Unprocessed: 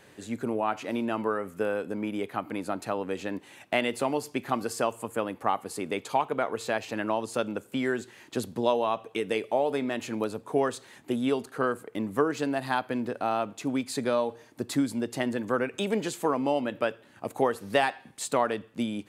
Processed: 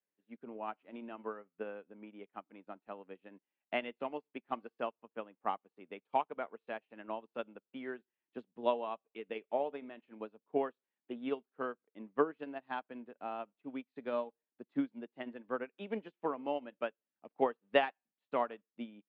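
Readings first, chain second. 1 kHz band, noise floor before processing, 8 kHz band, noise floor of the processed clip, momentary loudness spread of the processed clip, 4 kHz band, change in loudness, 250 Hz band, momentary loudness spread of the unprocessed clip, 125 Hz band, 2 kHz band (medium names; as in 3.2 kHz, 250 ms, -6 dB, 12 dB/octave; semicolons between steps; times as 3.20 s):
-9.0 dB, -56 dBFS, under -40 dB, under -85 dBFS, 15 LU, -12.5 dB, -10.0 dB, -13.0 dB, 6 LU, -20.0 dB, -11.0 dB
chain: Chebyshev band-pass 180–3000 Hz, order 3; upward expansion 2.5:1, over -47 dBFS; trim -2 dB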